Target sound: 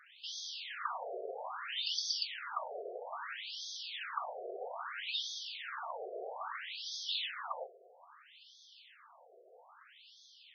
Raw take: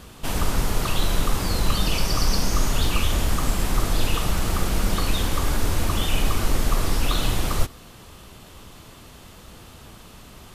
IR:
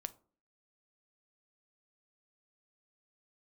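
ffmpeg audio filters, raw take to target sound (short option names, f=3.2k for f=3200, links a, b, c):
-filter_complex "[0:a]highpass=290[a];[1:a]atrim=start_sample=2205,asetrate=66150,aresample=44100[b];[a][b]afir=irnorm=-1:irlink=0,afftfilt=real='re*between(b*sr/1024,510*pow(4600/510,0.5+0.5*sin(2*PI*0.61*pts/sr))/1.41,510*pow(4600/510,0.5+0.5*sin(2*PI*0.61*pts/sr))*1.41)':imag='im*between(b*sr/1024,510*pow(4600/510,0.5+0.5*sin(2*PI*0.61*pts/sr))/1.41,510*pow(4600/510,0.5+0.5*sin(2*PI*0.61*pts/sr))*1.41)':win_size=1024:overlap=0.75,volume=2dB"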